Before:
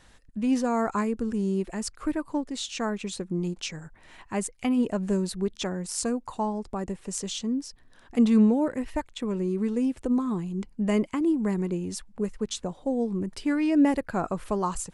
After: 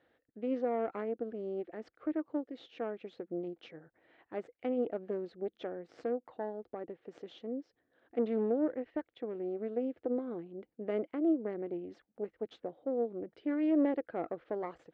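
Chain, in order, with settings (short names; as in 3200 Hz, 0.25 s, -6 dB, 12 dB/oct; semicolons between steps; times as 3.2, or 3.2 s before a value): tube stage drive 19 dB, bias 0.8; speaker cabinet 170–3000 Hz, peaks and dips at 190 Hz -9 dB, 320 Hz +8 dB, 490 Hz +9 dB, 690 Hz +5 dB, 1000 Hz -9 dB, 2600 Hz -6 dB; gain -7.5 dB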